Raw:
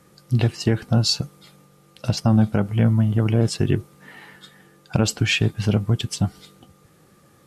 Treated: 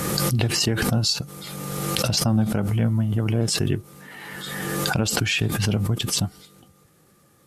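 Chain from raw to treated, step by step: high shelf 7600 Hz +7.5 dB; backwards sustainer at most 24 dB/s; gain -4.5 dB

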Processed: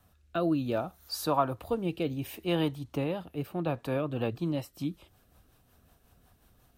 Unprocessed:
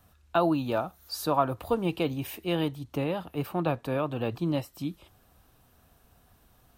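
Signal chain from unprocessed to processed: rotary speaker horn 0.65 Hz, later 5.5 Hz, at 3.58

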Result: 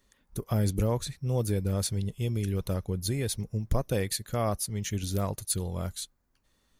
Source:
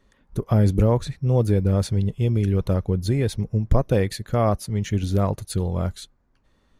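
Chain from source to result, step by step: pre-emphasis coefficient 0.8; gain +5 dB

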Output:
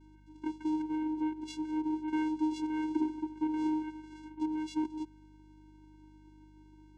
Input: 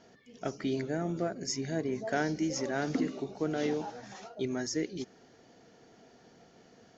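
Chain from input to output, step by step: vocoder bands 4, square 310 Hz; hum 50 Hz, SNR 24 dB

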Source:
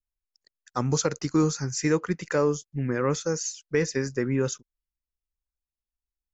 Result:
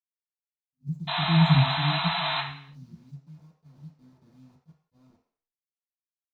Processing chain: reverse delay 0.422 s, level -5 dB; Doppler pass-by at 1.53, 17 m/s, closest 1.3 m; gate with hold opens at -55 dBFS; inverse Chebyshev band-stop 550–4400 Hz, stop band 60 dB; band shelf 3400 Hz -14.5 dB 2.3 oct; painted sound noise, 1.07–2.41, 640–4100 Hz -34 dBFS; requantised 12-bit, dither none; reverb RT60 0.55 s, pre-delay 3 ms, DRR -7.5 dB; attack slew limiter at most 540 dB/s; gain -3.5 dB

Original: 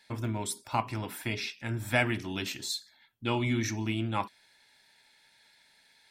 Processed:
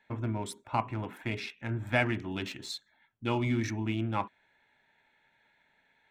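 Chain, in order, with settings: Wiener smoothing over 9 samples; high shelf 5400 Hz -10 dB

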